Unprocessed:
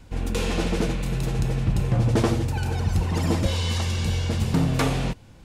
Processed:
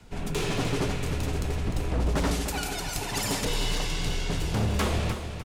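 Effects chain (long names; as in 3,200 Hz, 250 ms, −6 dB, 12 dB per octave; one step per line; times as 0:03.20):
0:02.31–0:03.45: spectral tilt +3 dB per octave
wave folding −18 dBFS
high-pass filter 62 Hz 12 dB per octave
soft clipping −18 dBFS, distortion −21 dB
on a send: repeating echo 302 ms, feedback 34%, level −8.5 dB
on the sum: frequency shifter −57 Hz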